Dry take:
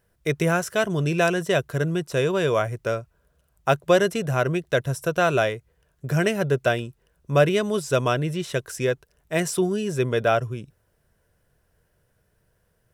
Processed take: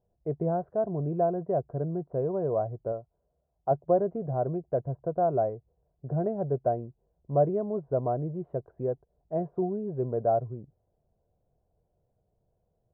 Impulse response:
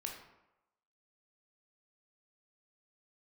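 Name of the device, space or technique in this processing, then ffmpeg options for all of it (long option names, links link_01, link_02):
under water: -filter_complex "[0:a]lowpass=frequency=790:width=0.5412,lowpass=frequency=790:width=1.3066,equalizer=frequency=730:width_type=o:width=0.39:gain=8,asettb=1/sr,asplit=3[link_01][link_02][link_03];[link_01]atrim=end=2.924[link_04];[link_02]atrim=start=2.92:end=3.71,asetpts=PTS-STARTPTS,afade=type=in:duration=0.004:curve=qsin,afade=type=out:start_time=0.786:duration=0.004:curve=qsin,lowshelf=frequency=250:gain=-6.5[link_05];[link_03]atrim=start=3.706[link_06];[link_04][link_05]acrossfade=duration=0.004:curve1=hsin:curve2=qsin[link_07];[link_07][link_06]acrossfade=duration=0.004:curve1=qsin:curve2=hsin,volume=-7dB"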